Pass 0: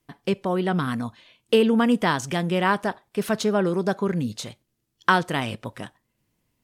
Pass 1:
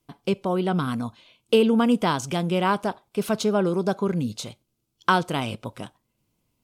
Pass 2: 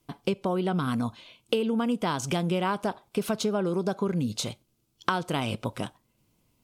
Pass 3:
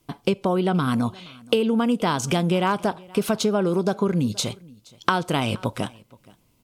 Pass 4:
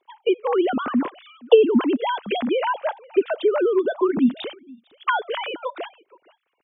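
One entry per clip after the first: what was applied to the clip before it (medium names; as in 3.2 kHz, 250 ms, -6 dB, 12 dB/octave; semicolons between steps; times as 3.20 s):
peaking EQ 1.8 kHz -13 dB 0.25 oct
compression 6:1, threshold -28 dBFS, peak gain reduction 13.5 dB; trim +4 dB
delay 473 ms -24 dB; trim +5.5 dB
formants replaced by sine waves; trim +1.5 dB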